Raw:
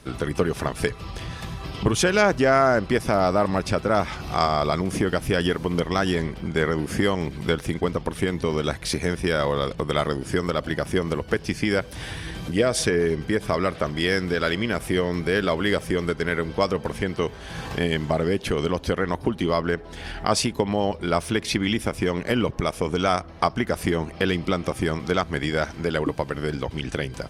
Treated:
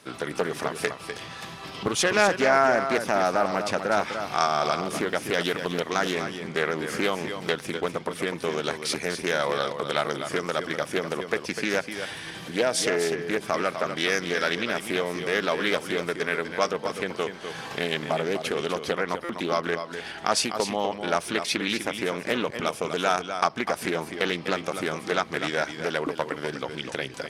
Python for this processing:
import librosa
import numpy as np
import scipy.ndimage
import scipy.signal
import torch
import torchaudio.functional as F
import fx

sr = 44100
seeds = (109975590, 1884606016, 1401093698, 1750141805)

p1 = scipy.signal.sosfilt(scipy.signal.butter(2, 160.0, 'highpass', fs=sr, output='sos'), x)
p2 = fx.low_shelf(p1, sr, hz=420.0, db=-7.5)
p3 = p2 + fx.echo_single(p2, sr, ms=250, db=-8.5, dry=0)
p4 = fx.buffer_glitch(p3, sr, at_s=(19.24,), block=256, repeats=8)
y = fx.doppler_dist(p4, sr, depth_ms=0.27)